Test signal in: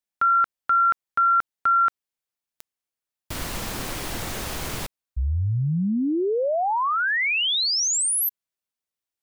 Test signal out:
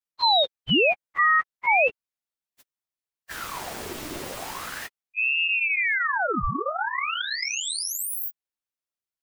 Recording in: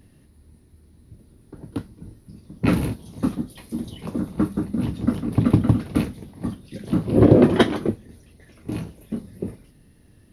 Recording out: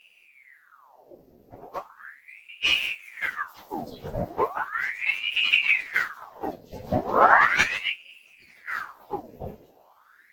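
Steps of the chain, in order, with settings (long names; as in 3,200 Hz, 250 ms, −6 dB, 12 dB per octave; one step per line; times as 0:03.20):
partials spread apart or drawn together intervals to 108%
ring modulator whose carrier an LFO sweeps 1,500 Hz, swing 80%, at 0.37 Hz
level +2.5 dB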